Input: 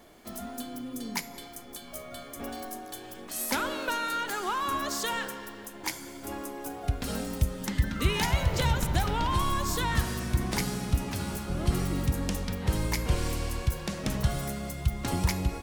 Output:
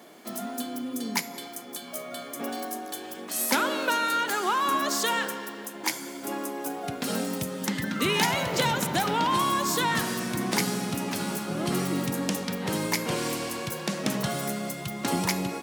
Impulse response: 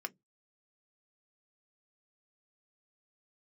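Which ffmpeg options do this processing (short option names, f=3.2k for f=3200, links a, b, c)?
-af "highpass=f=170:w=0.5412,highpass=f=170:w=1.3066,volume=5dB"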